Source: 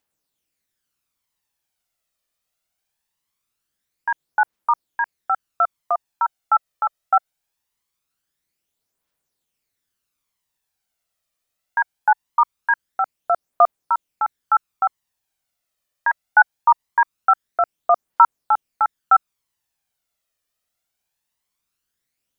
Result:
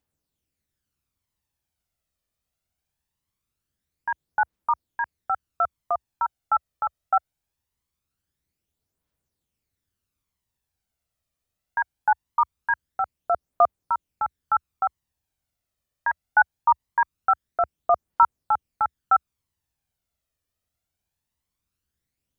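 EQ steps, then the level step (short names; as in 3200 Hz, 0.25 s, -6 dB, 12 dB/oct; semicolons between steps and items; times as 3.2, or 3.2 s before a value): bell 71 Hz +7.5 dB 1.1 oct; low shelf 390 Hz +11.5 dB; -6.0 dB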